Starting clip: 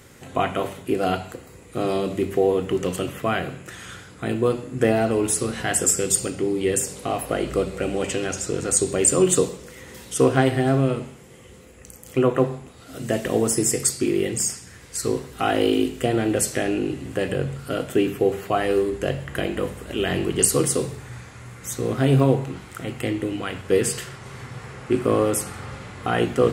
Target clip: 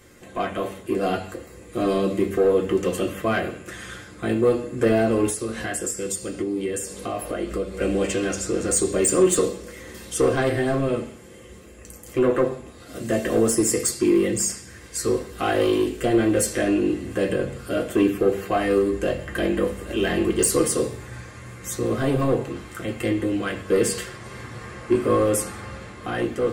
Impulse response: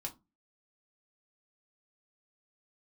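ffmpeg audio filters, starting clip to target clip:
-filter_complex "[0:a]asettb=1/sr,asplit=3[link_01][link_02][link_03];[link_01]atrim=end=5.294[link_04];[link_02]atrim=start=5.29:end=7.8,asetpts=PTS-STARTPTS,afade=type=in:duration=0.004:curve=qsin,afade=type=out:start_time=2.506:duration=0.004:curve=qsin,acompressor=threshold=-27dB:ratio=4[link_05];[link_03]atrim=start=7.796[link_06];[link_04][link_05]acrossfade=duration=0.004:curve1=hsin:curve2=qsin[link_07];[link_07][link_06]acrossfade=duration=0.004:curve1=qsin:curve2=hsin,asoftclip=type=tanh:threshold=-14dB,dynaudnorm=framelen=180:gausssize=11:maxgain=4dB[link_08];[1:a]atrim=start_sample=2205,asetrate=83790,aresample=44100[link_09];[link_08][link_09]afir=irnorm=-1:irlink=0,volume=4dB"

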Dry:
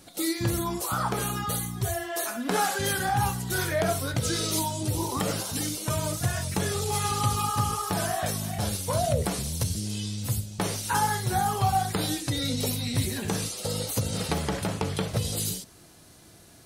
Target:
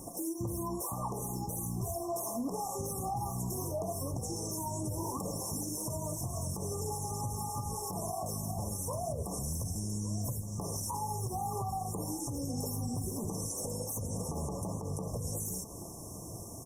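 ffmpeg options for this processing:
ffmpeg -i in.wav -filter_complex "[0:a]acompressor=threshold=-38dB:ratio=16,afftfilt=real='re*(1-between(b*sr/4096,1200,5300))':imag='im*(1-between(b*sr/4096,1200,5300))':win_size=4096:overlap=0.75,alimiter=level_in=11dB:limit=-24dB:level=0:latency=1:release=73,volume=-11dB,asplit=2[link_01][link_02];[link_02]adelay=1166,volume=-14dB,highshelf=frequency=4000:gain=-26.2[link_03];[link_01][link_03]amix=inputs=2:normalize=0,volume=8dB" -ar 48000 -c:a libopus -b:a 32k out.opus

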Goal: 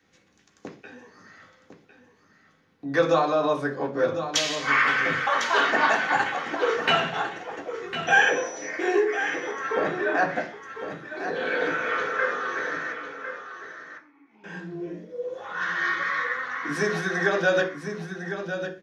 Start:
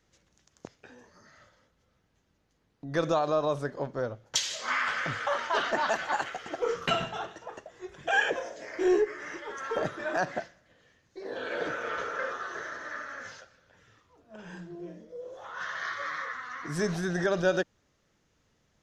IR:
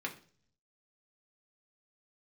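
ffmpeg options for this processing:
-filter_complex "[0:a]asettb=1/sr,asplit=3[link_01][link_02][link_03];[link_01]atrim=end=8.074[link_04];[link_02]atrim=start=8.07:end=8.69,asetpts=PTS-STARTPTS,afade=type=in:duration=0.004:curve=qsin,afade=type=out:start_time=0.616:duration=0.004:curve=qsin,aeval=exprs='val(0)+0.0112*sin(2*PI*5900*n/s)':channel_layout=same[link_05];[link_03]atrim=start=8.686[link_06];[link_04][link_05]acrossfade=duration=0.004:curve1=hsin:curve2=qsin[link_07];[link_07][link_06]acrossfade=duration=0.004:curve1=qsin:curve2=hsin,asettb=1/sr,asplit=3[link_08][link_09][link_10];[link_08]atrim=end=12.924[link_11];[link_09]atrim=start=12.92:end=14.44,asetpts=PTS-STARTPTS,afade=type=in:duration=0.004:curve=qsin,afade=type=out:start_time=1.516:duration=0.004:curve=qsin,asplit=3[link_12][link_13][link_14];[link_12]bandpass=frequency=300:width_type=q:width=8,volume=0dB[link_15];[link_13]bandpass=frequency=870:width_type=q:width=8,volume=-6dB[link_16];[link_14]bandpass=frequency=2240:width_type=q:width=8,volume=-9dB[link_17];[link_15][link_16][link_17]amix=inputs=3:normalize=0[link_18];[link_10]atrim=start=14.436[link_19];[link_11][link_18]acrossfade=duration=0.004:curve1=hsin:curve2=qsin[link_20];[link_20][link_19]acrossfade=duration=0.004:curve1=qsin:curve2=hsin,aecho=1:1:1053:0.316,acrossover=split=370|4600[link_21][link_22][link_23];[link_21]acompressor=threshold=-40dB:ratio=6[link_24];[link_24][link_22][link_23]amix=inputs=3:normalize=0,asettb=1/sr,asplit=3[link_25][link_26][link_27];[link_25]atrim=end=9.514[link_28];[link_26]atrim=start=9.51:end=10.36,asetpts=PTS-STARTPTS,afade=type=in:duration=0.004:curve=qsin,afade=type=out:start_time=0.846:duration=0.004:curve=qsin,aemphasis=mode=reproduction:type=cd[link_29];[link_27]atrim=start=10.356[link_30];[link_28][link_29]acrossfade=duration=0.004:curve1=hsin:curve2=qsin[link_31];[link_31][link_30]acrossfade=duration=0.004:curve1=qsin:curve2=hsin[link_32];[1:a]atrim=start_sample=2205,afade=type=out:start_time=0.21:duration=0.01,atrim=end_sample=9702[link_33];[link_32][link_33]afir=irnorm=-1:irlink=0,volume=5.5dB"

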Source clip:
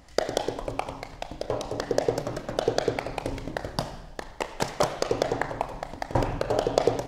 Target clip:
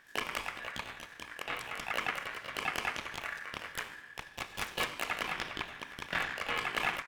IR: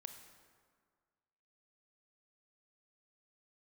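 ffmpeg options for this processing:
-filter_complex "[0:a]asplit=3[link_01][link_02][link_03];[link_02]asetrate=29433,aresample=44100,atempo=1.49831,volume=-6dB[link_04];[link_03]asetrate=88200,aresample=44100,atempo=0.5,volume=0dB[link_05];[link_01][link_04][link_05]amix=inputs=3:normalize=0,aeval=exprs='(tanh(7.08*val(0)+0.75)-tanh(0.75))/7.08':channel_layout=same,aeval=exprs='val(0)*sin(2*PI*1700*n/s)':channel_layout=same,volume=-5dB"

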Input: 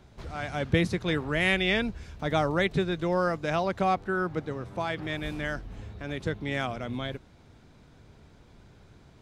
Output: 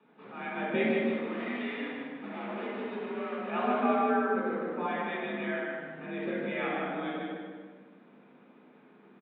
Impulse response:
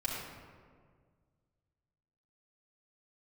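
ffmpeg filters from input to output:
-filter_complex "[0:a]asplit=3[link_01][link_02][link_03];[link_01]afade=type=out:start_time=0.89:duration=0.02[link_04];[link_02]volume=34.5dB,asoftclip=hard,volume=-34.5dB,afade=type=in:start_time=0.89:duration=0.02,afade=type=out:start_time=3.49:duration=0.02[link_05];[link_03]afade=type=in:start_time=3.49:duration=0.02[link_06];[link_04][link_05][link_06]amix=inputs=3:normalize=0,aecho=1:1:153|306|459|612|765:0.631|0.227|0.0818|0.0294|0.0106[link_07];[1:a]atrim=start_sample=2205,asetrate=66150,aresample=44100[link_08];[link_07][link_08]afir=irnorm=-1:irlink=0,highpass=frequency=170:width_type=q:width=0.5412,highpass=frequency=170:width_type=q:width=1.307,lowpass=frequency=2900:width_type=q:width=0.5176,lowpass=frequency=2900:width_type=q:width=0.7071,lowpass=frequency=2900:width_type=q:width=1.932,afreqshift=54,volume=-2.5dB"

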